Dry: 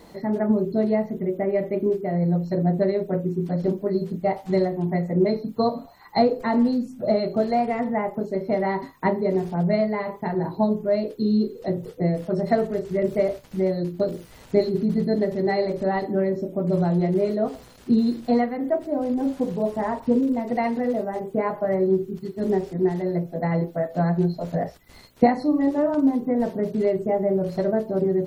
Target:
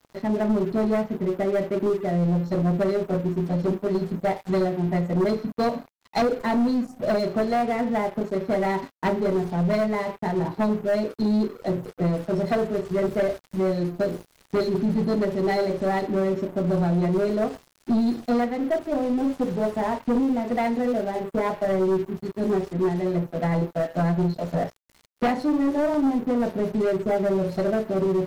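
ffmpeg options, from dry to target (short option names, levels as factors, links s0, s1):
-af "aeval=exprs='sgn(val(0))*max(abs(val(0))-0.0075,0)':c=same,aeval=exprs='(tanh(11.2*val(0)+0.1)-tanh(0.1))/11.2':c=same,volume=1.5"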